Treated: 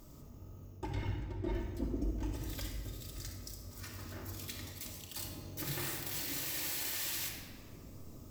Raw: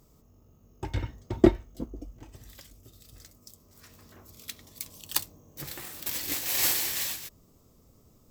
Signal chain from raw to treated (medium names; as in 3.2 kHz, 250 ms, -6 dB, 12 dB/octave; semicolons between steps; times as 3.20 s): reverse; compression 6:1, threshold -38 dBFS, peak gain reduction 24.5 dB; reverse; peak limiter -33.5 dBFS, peak gain reduction 12 dB; simulated room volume 2900 m³, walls mixed, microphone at 2.6 m; trim +3 dB